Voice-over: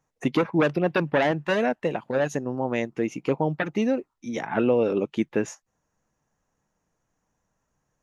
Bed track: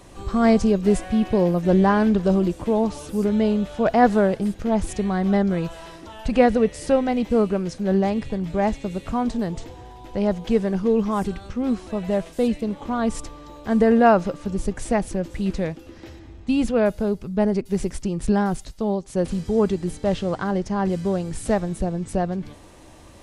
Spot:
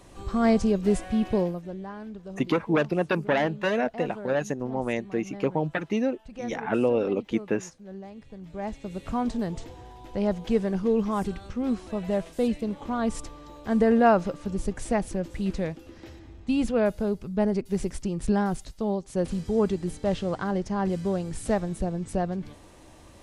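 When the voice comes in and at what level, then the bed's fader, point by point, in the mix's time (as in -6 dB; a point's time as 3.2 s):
2.15 s, -2.0 dB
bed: 1.38 s -4.5 dB
1.75 s -21 dB
8.11 s -21 dB
9.11 s -4 dB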